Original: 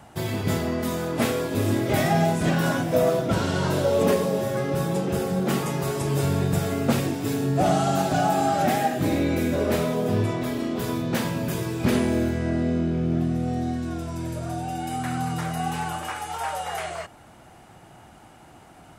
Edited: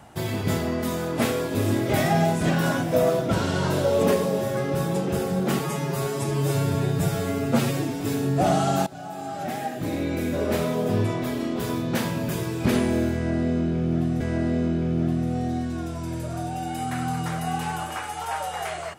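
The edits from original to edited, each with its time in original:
0:05.59–0:07.20: time-stretch 1.5×
0:08.06–0:09.98: fade in, from −20.5 dB
0:12.33–0:13.40: repeat, 2 plays

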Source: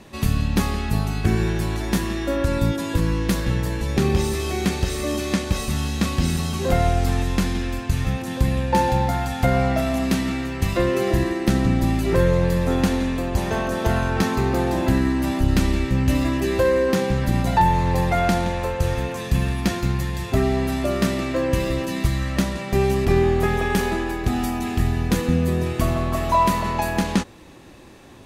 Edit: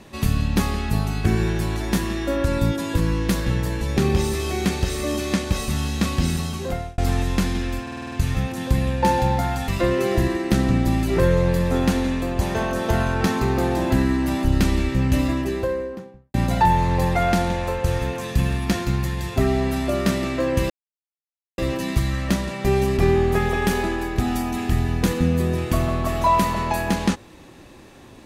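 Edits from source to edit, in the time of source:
0:06.11–0:06.98: fade out equal-power
0:07.82: stutter 0.05 s, 7 plays
0:09.38–0:10.64: remove
0:16.05–0:17.30: fade out and dull
0:21.66: splice in silence 0.88 s

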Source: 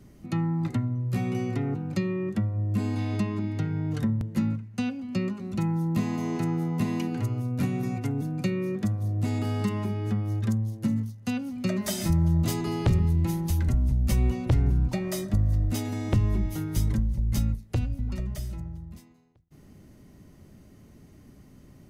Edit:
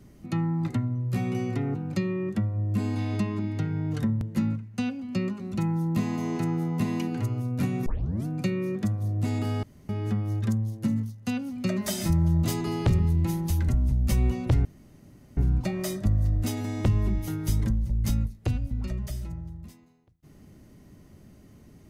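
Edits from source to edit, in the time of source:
0:07.86: tape start 0.40 s
0:09.63–0:09.89: fill with room tone
0:14.65: splice in room tone 0.72 s

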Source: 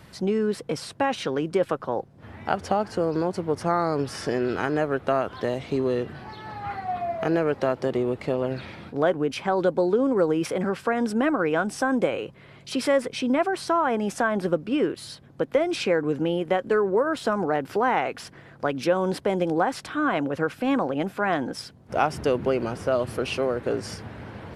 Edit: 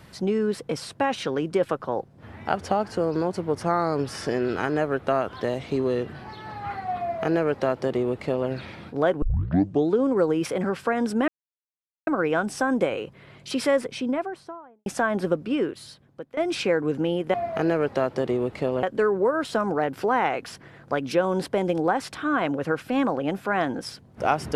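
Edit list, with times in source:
0:07.00–0:08.49: duplicate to 0:16.55
0:09.22: tape start 0.71 s
0:11.28: splice in silence 0.79 s
0:12.89–0:14.07: fade out and dull
0:14.66–0:15.58: fade out, to −19.5 dB

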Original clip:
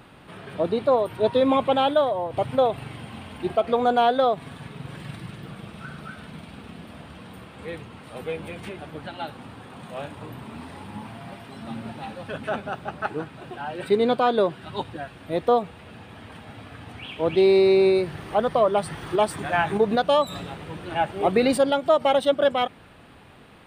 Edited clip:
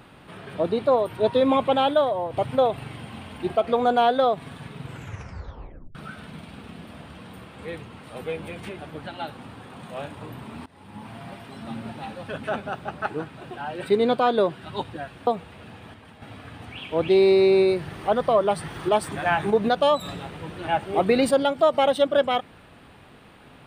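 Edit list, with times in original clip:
0:04.83: tape stop 1.12 s
0:10.66–0:11.17: fade in, from −21 dB
0:15.27–0:15.54: remove
0:16.21–0:16.49: clip gain −5.5 dB

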